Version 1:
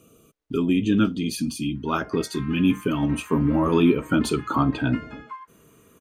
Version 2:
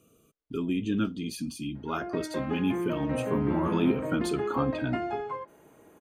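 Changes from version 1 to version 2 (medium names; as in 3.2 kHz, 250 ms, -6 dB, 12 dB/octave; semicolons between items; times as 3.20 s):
speech -8.0 dB; background: remove steep high-pass 960 Hz 72 dB/octave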